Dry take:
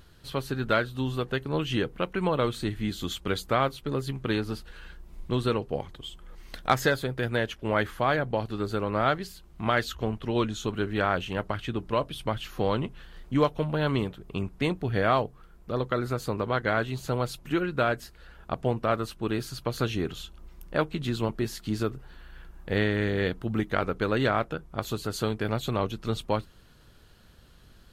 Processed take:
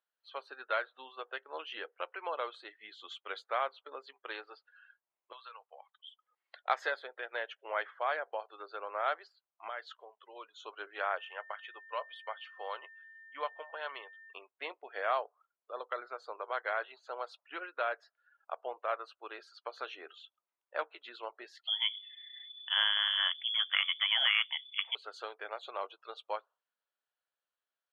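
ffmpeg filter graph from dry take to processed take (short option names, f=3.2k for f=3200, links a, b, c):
-filter_complex "[0:a]asettb=1/sr,asplit=3[a][b][c];[a]atrim=end=5.324[d];[b]atrim=start=5.32:end=6.07,asetpts=PTS-STARTPTS,afade=t=in:d=0.004:c=qsin,afade=t=out:st=0.746:d=0.004:c=qsin,highpass=960,highshelf=f=6.8k:g=-8,acompressor=threshold=-36dB:ratio=6:attack=3.2:release=140:knee=1:detection=peak[e];[c]atrim=start=6.066[f];[d][e]acrossfade=d=0.004:c1=hsin:c2=qsin[g];[g][f]acrossfade=d=0.004:c1=qsin:c2=hsin,asettb=1/sr,asplit=3[h][i][j];[h]atrim=end=9.684[k];[i]atrim=start=9.68:end=10.59,asetpts=PTS-STARTPTS,afade=t=in:d=0.004:c=qsin,afade=t=out:st=0.906:d=0.004:c=qsin,bass=f=250:g=7,treble=f=4k:g=0,acompressor=threshold=-33dB:ratio=2:attack=3.2:release=140:knee=1:detection=peak[l];[j]atrim=start=10.586[m];[k][l]acrossfade=d=0.004:c1=hsin:c2=qsin[n];[n][m]acrossfade=d=0.004:c1=qsin:c2=hsin,asettb=1/sr,asplit=3[o][p][q];[o]atrim=end=11.184[r];[p]atrim=start=11.18:end=14.33,asetpts=PTS-STARTPTS,afade=t=in:d=0.004:c=qsin,afade=t=out:st=3.146:d=0.004:c=qsin,equalizer=f=160:w=0.33:g=-8,bandreject=f=4k:w=28,aeval=exprs='val(0)+0.00562*sin(2*PI*1800*n/s)':c=same[s];[q]atrim=start=14.326[t];[r][s]acrossfade=d=0.004:c1=hsin:c2=qsin[u];[u][t]acrossfade=d=0.004:c1=qsin:c2=hsin,asettb=1/sr,asplit=3[v][w][x];[v]atrim=end=21.674[y];[w]atrim=start=21.67:end=24.95,asetpts=PTS-STARTPTS,afade=t=in:d=0.004:c=qsin,afade=t=out:st=3.276:d=0.004:c=qsin,acontrast=24,lowpass=f=3k:t=q:w=0.5098,lowpass=f=3k:t=q:w=0.6013,lowpass=f=3k:t=q:w=0.9,lowpass=f=3k:t=q:w=2.563,afreqshift=-3500[z];[x]atrim=start=24.946[aa];[y][z]acrossfade=d=0.004:c1=hsin:c2=qsin[ab];[ab][aa]acrossfade=d=0.004:c1=qsin:c2=hsin,highpass=f=580:w=0.5412,highpass=f=580:w=1.3066,afftdn=nr=24:nf=-45,lowpass=3.2k,volume=-6.5dB"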